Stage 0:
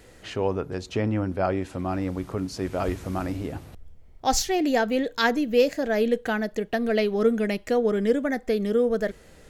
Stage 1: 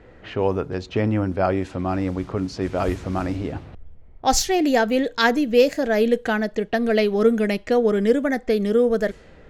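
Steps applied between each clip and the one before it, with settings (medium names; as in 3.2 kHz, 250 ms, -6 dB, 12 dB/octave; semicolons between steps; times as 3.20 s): level-controlled noise filter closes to 1.8 kHz, open at -20.5 dBFS; trim +4 dB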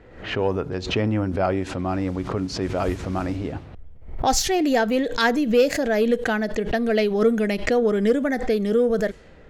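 saturation -6 dBFS, distortion -26 dB; swell ahead of each attack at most 91 dB/s; trim -1 dB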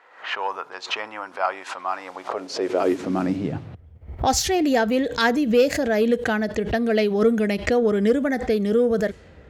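high-pass sweep 1 kHz -> 70 Hz, 2.01–4.08 s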